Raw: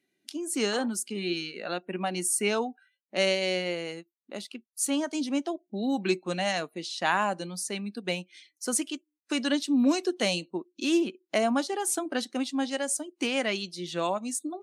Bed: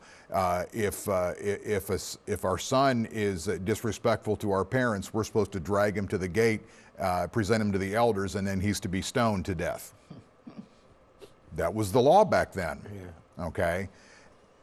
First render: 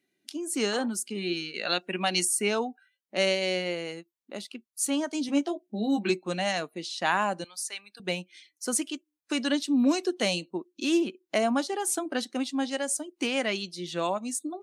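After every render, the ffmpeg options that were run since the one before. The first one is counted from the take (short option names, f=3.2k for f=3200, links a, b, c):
-filter_complex "[0:a]asettb=1/sr,asplit=3[a][b][c];[a]atrim=end=1.544[d];[b]atrim=start=1.54:end=2.25,asetpts=PTS-STARTPTS,afade=t=in:d=0.004:c=qsin,afade=t=out:st=0.706:d=0.004:c=qsin,equalizer=f=4.9k:w=0.44:g=13.5[e];[c]atrim=start=2.246[f];[d][e]acrossfade=d=0.004:c1=hsin:c2=qsin[g];[g][f]acrossfade=d=0.004:c1=qsin:c2=hsin,asettb=1/sr,asplit=3[h][i][j];[h]atrim=end=5.274[k];[i]atrim=start=5.27:end=6.1,asetpts=PTS-STARTPTS,afade=t=in:d=0.004:c=qsin,afade=t=out:st=0.826:d=0.004:c=qsin,asplit=2[l][m];[m]adelay=14,volume=-4.5dB[n];[l][n]amix=inputs=2:normalize=0,atrim=end_sample=36603[o];[j]atrim=start=6.096[p];[k][o]acrossfade=d=0.004:c1=hsin:c2=qsin[q];[q][p]acrossfade=d=0.004:c1=qsin:c2=hsin,asettb=1/sr,asplit=3[r][s][t];[r]atrim=end=7.444[u];[s]atrim=start=7.44:end=8,asetpts=PTS-STARTPTS,afade=t=in:d=0.004:c=qsin,afade=t=out:st=0.556:d=0.004:c=qsin,highpass=1.1k[v];[t]atrim=start=7.996[w];[u][v]acrossfade=d=0.004:c1=hsin:c2=qsin[x];[x][w]acrossfade=d=0.004:c1=qsin:c2=hsin"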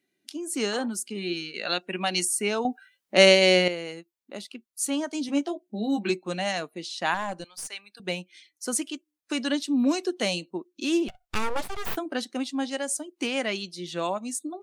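-filter_complex "[0:a]asettb=1/sr,asplit=3[a][b][c];[a]atrim=end=7.144[d];[b]atrim=start=7.14:end=7.7,asetpts=PTS-STARTPTS,afade=t=in:d=0.004:c=qsin,afade=t=out:st=0.556:d=0.004:c=qsin,aeval=exprs='(tanh(14.1*val(0)+0.55)-tanh(0.55))/14.1':c=same[e];[c]atrim=start=7.696[f];[d][e]acrossfade=d=0.004:c1=hsin:c2=qsin[g];[g][f]acrossfade=d=0.004:c1=qsin:c2=hsin,asettb=1/sr,asplit=3[h][i][j];[h]atrim=end=11.084[k];[i]atrim=start=11.08:end=11.97,asetpts=PTS-STARTPTS,afade=t=in:d=0.004:c=qsin,afade=t=out:st=0.886:d=0.004:c=qsin,aeval=exprs='abs(val(0))':c=same[l];[j]atrim=start=11.966[m];[k][l]acrossfade=d=0.004:c1=hsin:c2=qsin[n];[n][m]acrossfade=d=0.004:c1=qsin:c2=hsin,asplit=3[o][p][q];[o]atrim=end=2.652[r];[p]atrim=start=2.648:end=3.682,asetpts=PTS-STARTPTS,volume=9.5dB[s];[q]atrim=start=3.678[t];[r][s]acrossfade=d=0.004:c1=hsin:c2=hsin[u];[u][t]acrossfade=d=0.004:c1=hsin:c2=hsin"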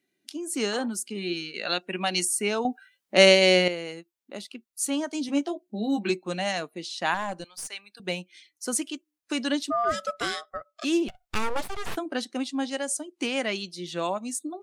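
-filter_complex "[0:a]asplit=3[a][b][c];[a]afade=t=out:st=9.7:d=0.02[d];[b]aeval=exprs='val(0)*sin(2*PI*940*n/s)':c=same,afade=t=in:st=9.7:d=0.02,afade=t=out:st=10.83:d=0.02[e];[c]afade=t=in:st=10.83:d=0.02[f];[d][e][f]amix=inputs=3:normalize=0,asettb=1/sr,asplit=3[g][h][i];[g]atrim=end=11.764[j];[h]atrim=start=11.76:end=13.56,asetpts=PTS-STARTPTS,afade=t=in:d=0.004:c=qsin,afade=t=out:st=1.796:d=0.004:c=qsin,lowpass=f=12k:w=0.5412,lowpass=f=12k:w=1.3066[k];[i]atrim=start=13.556[l];[j][k]acrossfade=d=0.004:c1=hsin:c2=qsin[m];[m][l]acrossfade=d=0.004:c1=qsin:c2=hsin"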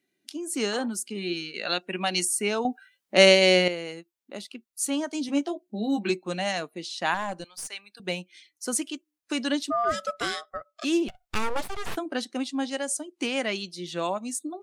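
-af anull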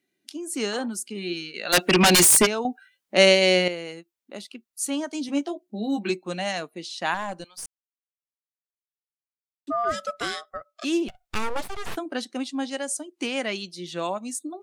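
-filter_complex "[0:a]asplit=3[a][b][c];[a]afade=t=out:st=1.72:d=0.02[d];[b]aeval=exprs='0.251*sin(PI/2*5.01*val(0)/0.251)':c=same,afade=t=in:st=1.72:d=0.02,afade=t=out:st=2.45:d=0.02[e];[c]afade=t=in:st=2.45:d=0.02[f];[d][e][f]amix=inputs=3:normalize=0,asplit=3[g][h][i];[g]atrim=end=7.66,asetpts=PTS-STARTPTS,afade=t=out:st=7.656:d=0.004:c=hsin[j];[h]atrim=start=7.66:end=9.67,asetpts=PTS-STARTPTS,volume=0[k];[i]atrim=start=9.67,asetpts=PTS-STARTPTS,afade=t=in:d=0.004:c=hsin[l];[j][k][l]concat=n=3:v=0:a=1"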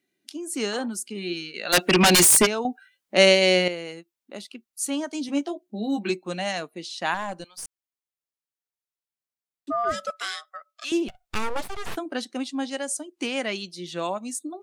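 -filter_complex "[0:a]asettb=1/sr,asplit=3[a][b][c];[a]atrim=end=10.104[d];[b]atrim=start=10.1:end=10.92,asetpts=PTS-STARTPTS,afade=t=in:d=0.004:c=qsin,afade=t=out:st=0.816:d=0.004:c=qsin,highpass=1.1k[e];[c]atrim=start=10.916[f];[d][e]acrossfade=d=0.004:c1=hsin:c2=qsin[g];[g][f]acrossfade=d=0.004:c1=qsin:c2=hsin"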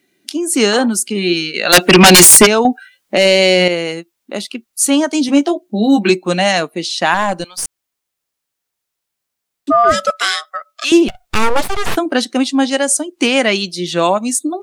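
-af "acontrast=55,alimiter=level_in=9dB:limit=-1dB:release=50:level=0:latency=1"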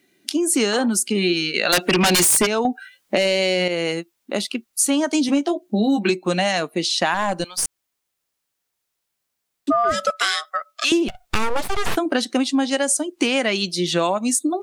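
-af "acompressor=threshold=-16dB:ratio=6"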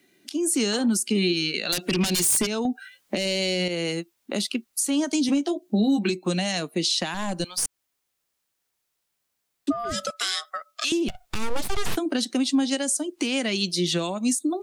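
-filter_complex "[0:a]acrossover=split=340|3000[a][b][c];[b]acompressor=threshold=-32dB:ratio=4[d];[a][d][c]amix=inputs=3:normalize=0,alimiter=limit=-14dB:level=0:latency=1:release=164"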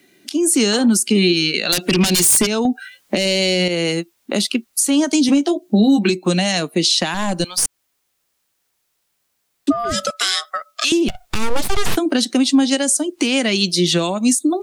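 -af "volume=8dB"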